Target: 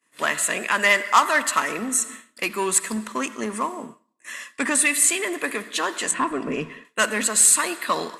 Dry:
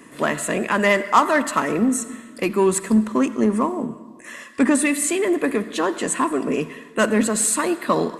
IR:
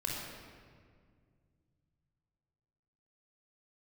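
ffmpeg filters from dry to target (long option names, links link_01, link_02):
-filter_complex "[0:a]tiltshelf=frequency=770:gain=-9.5,agate=range=-33dB:threshold=-30dB:ratio=3:detection=peak,asettb=1/sr,asplit=3[link_01][link_02][link_03];[link_01]atrim=end=6.114[link_04];[link_02]atrim=start=6.11:end=6.85,asetpts=PTS-STARTPTS,afade=type=in:duration=0.004:curve=qsin,afade=type=out:start_time=0.736:duration=0.004:curve=qsin,aemphasis=mode=reproduction:type=riaa[link_05];[link_03]atrim=start=6.846[link_06];[link_04][link_05]acrossfade=duration=0.004:curve1=hsin:curve2=qsin[link_07];[link_07][link_06]acrossfade=duration=0.004:curve1=qsin:curve2=hsin,volume=-4dB"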